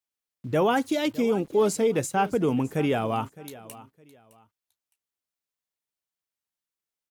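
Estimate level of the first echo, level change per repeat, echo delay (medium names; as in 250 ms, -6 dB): -18.5 dB, -11.5 dB, 612 ms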